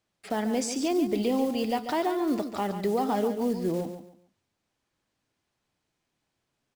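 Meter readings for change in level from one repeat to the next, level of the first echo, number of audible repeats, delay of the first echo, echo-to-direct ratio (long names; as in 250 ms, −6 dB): −11.5 dB, −9.5 dB, 3, 141 ms, −9.0 dB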